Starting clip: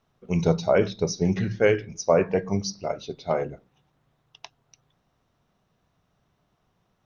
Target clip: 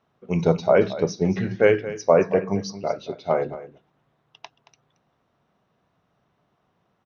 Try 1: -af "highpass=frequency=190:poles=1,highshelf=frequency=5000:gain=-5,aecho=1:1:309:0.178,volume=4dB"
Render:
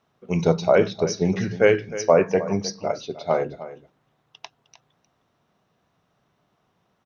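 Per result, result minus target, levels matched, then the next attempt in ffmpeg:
echo 84 ms late; 8,000 Hz band +6.0 dB
-af "highpass=frequency=190:poles=1,highshelf=frequency=5000:gain=-5,aecho=1:1:225:0.178,volume=4dB"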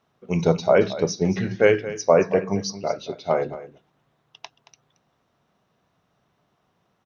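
8,000 Hz band +6.0 dB
-af "highpass=frequency=190:poles=1,highshelf=frequency=5000:gain=-15.5,aecho=1:1:225:0.178,volume=4dB"

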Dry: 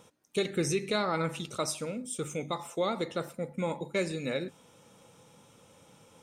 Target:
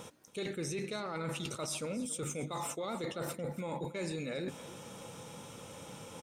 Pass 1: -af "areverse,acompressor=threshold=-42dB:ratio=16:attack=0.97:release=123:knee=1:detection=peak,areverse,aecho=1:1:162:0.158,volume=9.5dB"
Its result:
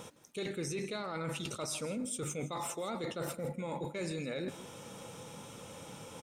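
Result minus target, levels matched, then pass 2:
echo 116 ms early
-af "areverse,acompressor=threshold=-42dB:ratio=16:attack=0.97:release=123:knee=1:detection=peak,areverse,aecho=1:1:278:0.158,volume=9.5dB"

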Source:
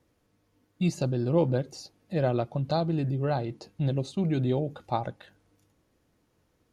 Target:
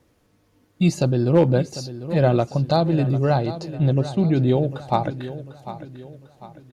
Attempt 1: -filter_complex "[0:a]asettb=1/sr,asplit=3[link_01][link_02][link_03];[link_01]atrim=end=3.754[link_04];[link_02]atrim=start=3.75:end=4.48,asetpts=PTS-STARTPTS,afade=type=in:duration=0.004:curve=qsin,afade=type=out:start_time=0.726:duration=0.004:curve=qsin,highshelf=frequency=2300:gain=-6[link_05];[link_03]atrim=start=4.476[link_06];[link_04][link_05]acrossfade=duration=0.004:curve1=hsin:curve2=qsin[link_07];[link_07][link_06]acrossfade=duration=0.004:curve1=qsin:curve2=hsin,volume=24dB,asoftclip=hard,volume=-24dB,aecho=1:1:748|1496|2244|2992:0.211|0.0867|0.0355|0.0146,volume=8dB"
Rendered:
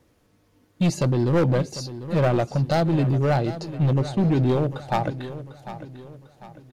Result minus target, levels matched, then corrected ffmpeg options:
gain into a clipping stage and back: distortion +20 dB
-filter_complex "[0:a]asettb=1/sr,asplit=3[link_01][link_02][link_03];[link_01]atrim=end=3.754[link_04];[link_02]atrim=start=3.75:end=4.48,asetpts=PTS-STARTPTS,afade=type=in:duration=0.004:curve=qsin,afade=type=out:start_time=0.726:duration=0.004:curve=qsin,highshelf=frequency=2300:gain=-6[link_05];[link_03]atrim=start=4.476[link_06];[link_04][link_05]acrossfade=duration=0.004:curve1=hsin:curve2=qsin[link_07];[link_07][link_06]acrossfade=duration=0.004:curve1=qsin:curve2=hsin,volume=14.5dB,asoftclip=hard,volume=-14.5dB,aecho=1:1:748|1496|2244|2992:0.211|0.0867|0.0355|0.0146,volume=8dB"

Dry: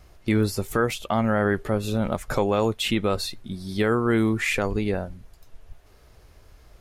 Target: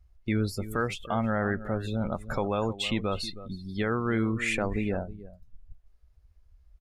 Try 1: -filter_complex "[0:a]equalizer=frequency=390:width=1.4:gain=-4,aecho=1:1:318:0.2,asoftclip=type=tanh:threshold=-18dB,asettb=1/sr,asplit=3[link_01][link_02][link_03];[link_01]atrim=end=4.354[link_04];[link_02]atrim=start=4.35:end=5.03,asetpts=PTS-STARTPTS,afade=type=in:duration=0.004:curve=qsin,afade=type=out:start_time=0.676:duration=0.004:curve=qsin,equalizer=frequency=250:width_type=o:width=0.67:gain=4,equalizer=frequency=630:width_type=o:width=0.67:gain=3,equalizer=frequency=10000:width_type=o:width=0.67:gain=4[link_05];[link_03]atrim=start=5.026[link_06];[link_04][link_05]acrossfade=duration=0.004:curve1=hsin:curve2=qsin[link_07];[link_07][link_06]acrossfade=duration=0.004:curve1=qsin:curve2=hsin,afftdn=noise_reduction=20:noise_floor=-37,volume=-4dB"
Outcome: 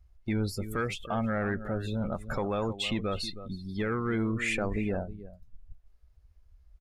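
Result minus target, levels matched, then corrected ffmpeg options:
soft clipping: distortion +16 dB
-filter_complex "[0:a]equalizer=frequency=390:width=1.4:gain=-4,aecho=1:1:318:0.2,asoftclip=type=tanh:threshold=-7dB,asettb=1/sr,asplit=3[link_01][link_02][link_03];[link_01]atrim=end=4.354[link_04];[link_02]atrim=start=4.35:end=5.03,asetpts=PTS-STARTPTS,afade=type=in:duration=0.004:curve=qsin,afade=type=out:start_time=0.676:duration=0.004:curve=qsin,equalizer=frequency=250:width_type=o:width=0.67:gain=4,equalizer=frequency=630:width_type=o:width=0.67:gain=3,equalizer=frequency=10000:width_type=o:width=0.67:gain=4[link_05];[link_03]atrim=start=5.026[link_06];[link_04][link_05]acrossfade=duration=0.004:curve1=hsin:curve2=qsin[link_07];[link_07][link_06]acrossfade=duration=0.004:curve1=qsin:curve2=hsin,afftdn=noise_reduction=20:noise_floor=-37,volume=-4dB"

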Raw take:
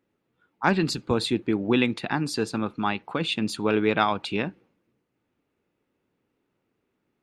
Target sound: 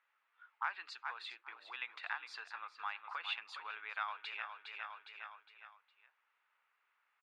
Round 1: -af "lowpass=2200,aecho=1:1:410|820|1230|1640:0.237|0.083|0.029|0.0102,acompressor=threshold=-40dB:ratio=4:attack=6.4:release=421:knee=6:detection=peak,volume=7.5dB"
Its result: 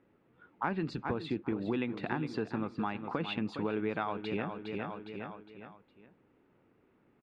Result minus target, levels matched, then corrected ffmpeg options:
1,000 Hz band −2.5 dB
-af "lowpass=2200,aecho=1:1:410|820|1230|1640:0.237|0.083|0.029|0.0102,acompressor=threshold=-40dB:ratio=4:attack=6.4:release=421:knee=6:detection=peak,highpass=frequency=1100:width=0.5412,highpass=frequency=1100:width=1.3066,volume=7.5dB"

